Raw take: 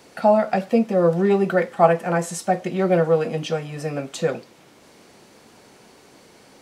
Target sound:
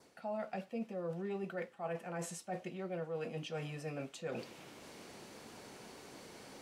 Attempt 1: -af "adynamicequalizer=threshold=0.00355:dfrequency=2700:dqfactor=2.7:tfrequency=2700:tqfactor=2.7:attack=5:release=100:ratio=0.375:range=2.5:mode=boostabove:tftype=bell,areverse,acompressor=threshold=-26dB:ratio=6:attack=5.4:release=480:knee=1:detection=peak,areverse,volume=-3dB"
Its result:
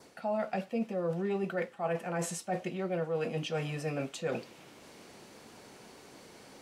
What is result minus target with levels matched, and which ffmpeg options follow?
compressor: peak gain reduction -7.5 dB
-af "adynamicequalizer=threshold=0.00355:dfrequency=2700:dqfactor=2.7:tfrequency=2700:tqfactor=2.7:attack=5:release=100:ratio=0.375:range=2.5:mode=boostabove:tftype=bell,areverse,acompressor=threshold=-35dB:ratio=6:attack=5.4:release=480:knee=1:detection=peak,areverse,volume=-3dB"

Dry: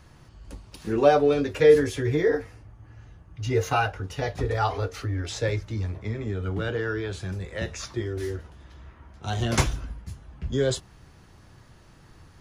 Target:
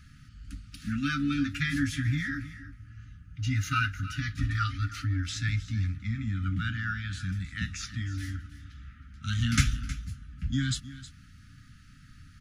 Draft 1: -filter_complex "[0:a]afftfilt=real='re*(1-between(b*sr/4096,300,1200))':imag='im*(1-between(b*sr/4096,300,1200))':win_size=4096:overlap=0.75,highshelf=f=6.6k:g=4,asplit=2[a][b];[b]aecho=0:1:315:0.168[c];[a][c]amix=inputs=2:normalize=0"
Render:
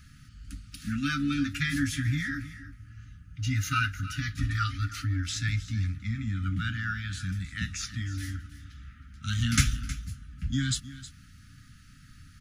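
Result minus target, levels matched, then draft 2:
8000 Hz band +4.0 dB
-filter_complex "[0:a]afftfilt=real='re*(1-between(b*sr/4096,300,1200))':imag='im*(1-between(b*sr/4096,300,1200))':win_size=4096:overlap=0.75,highshelf=f=6.6k:g=-4,asplit=2[a][b];[b]aecho=0:1:315:0.168[c];[a][c]amix=inputs=2:normalize=0"

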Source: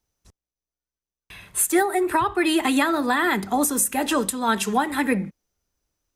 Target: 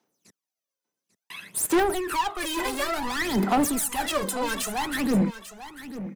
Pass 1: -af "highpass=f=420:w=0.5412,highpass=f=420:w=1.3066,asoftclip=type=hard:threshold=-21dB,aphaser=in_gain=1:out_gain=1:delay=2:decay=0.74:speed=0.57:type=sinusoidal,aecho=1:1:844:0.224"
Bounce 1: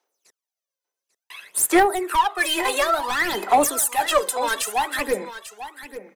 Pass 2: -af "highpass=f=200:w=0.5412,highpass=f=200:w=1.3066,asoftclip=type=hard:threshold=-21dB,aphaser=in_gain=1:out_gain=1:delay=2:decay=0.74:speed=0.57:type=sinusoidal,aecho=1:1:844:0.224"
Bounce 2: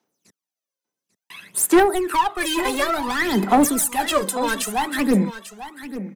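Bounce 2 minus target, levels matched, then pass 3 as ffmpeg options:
hard clip: distortion -5 dB
-af "highpass=f=200:w=0.5412,highpass=f=200:w=1.3066,asoftclip=type=hard:threshold=-29dB,aphaser=in_gain=1:out_gain=1:delay=2:decay=0.74:speed=0.57:type=sinusoidal,aecho=1:1:844:0.224"

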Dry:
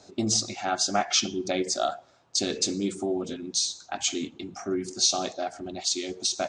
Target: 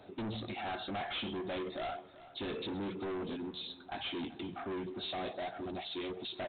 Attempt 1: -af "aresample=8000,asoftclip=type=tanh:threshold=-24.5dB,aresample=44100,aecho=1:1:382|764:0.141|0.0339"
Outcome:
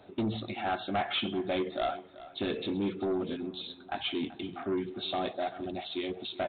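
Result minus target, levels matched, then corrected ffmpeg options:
soft clip: distortion -8 dB
-af "aresample=8000,asoftclip=type=tanh:threshold=-36dB,aresample=44100,aecho=1:1:382|764:0.141|0.0339"

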